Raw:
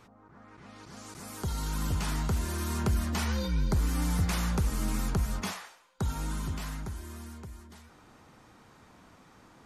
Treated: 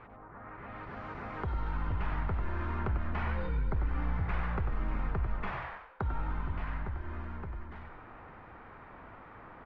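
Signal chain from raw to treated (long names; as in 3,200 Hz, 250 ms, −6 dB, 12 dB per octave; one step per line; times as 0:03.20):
low-pass filter 2,200 Hz 24 dB per octave
on a send: echo with shifted repeats 95 ms, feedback 32%, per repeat −60 Hz, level −5 dB
on the sum: downward compressor 2 to 1, threshold −42 dBFS, peak gain reduction 11.5 dB
parametric band 200 Hz −8 dB 1.7 octaves
level +7.5 dB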